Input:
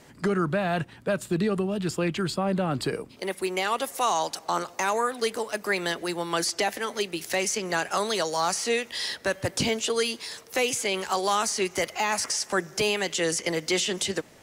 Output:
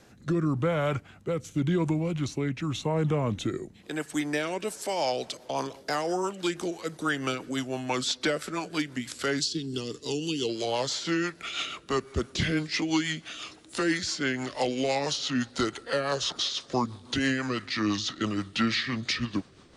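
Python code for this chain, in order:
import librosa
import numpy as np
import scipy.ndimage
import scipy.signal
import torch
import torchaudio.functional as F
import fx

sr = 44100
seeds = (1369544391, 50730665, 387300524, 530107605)

y = fx.speed_glide(x, sr, from_pct=85, to_pct=61)
y = fx.spec_box(y, sr, start_s=9.4, length_s=1.09, low_hz=490.0, high_hz=2500.0, gain_db=-18)
y = fx.rotary_switch(y, sr, hz=0.9, then_hz=6.0, switch_at_s=4.38)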